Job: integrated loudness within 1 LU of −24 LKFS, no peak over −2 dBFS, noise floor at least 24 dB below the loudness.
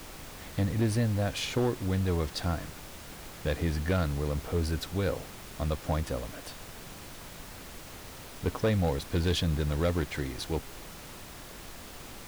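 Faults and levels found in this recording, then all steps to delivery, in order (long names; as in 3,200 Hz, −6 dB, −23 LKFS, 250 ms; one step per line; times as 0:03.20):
share of clipped samples 0.7%; peaks flattened at −21.0 dBFS; background noise floor −46 dBFS; target noise floor −55 dBFS; integrated loudness −31.0 LKFS; sample peak −21.0 dBFS; target loudness −24.0 LKFS
→ clipped peaks rebuilt −21 dBFS
noise reduction from a noise print 9 dB
level +7 dB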